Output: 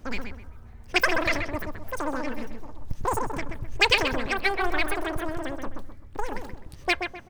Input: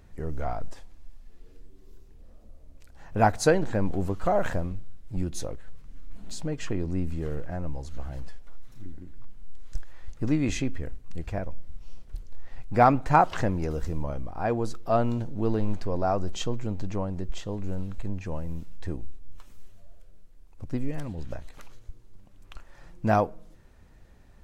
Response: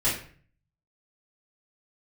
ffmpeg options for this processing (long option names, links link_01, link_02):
-filter_complex "[0:a]asetrate=147735,aresample=44100,asplit=2[link_01][link_02];[link_02]adelay=129,lowpass=frequency=2200:poles=1,volume=-5dB,asplit=2[link_03][link_04];[link_04]adelay=129,lowpass=frequency=2200:poles=1,volume=0.35,asplit=2[link_05][link_06];[link_06]adelay=129,lowpass=frequency=2200:poles=1,volume=0.35,asplit=2[link_07][link_08];[link_08]adelay=129,lowpass=frequency=2200:poles=1,volume=0.35[link_09];[link_01][link_03][link_05][link_07][link_09]amix=inputs=5:normalize=0"